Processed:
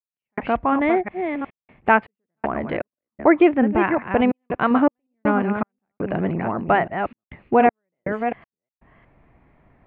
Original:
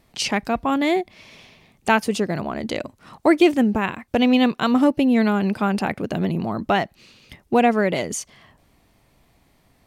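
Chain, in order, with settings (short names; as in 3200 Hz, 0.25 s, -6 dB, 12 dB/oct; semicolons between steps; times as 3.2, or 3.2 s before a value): reverse delay 0.362 s, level -7.5 dB; step gate "..xxxxxx.xx..xx" 80 bpm -60 dB; inverse Chebyshev low-pass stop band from 5400 Hz, stop band 50 dB; dynamic EQ 190 Hz, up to -5 dB, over -31 dBFS, Q 0.79; gain +3 dB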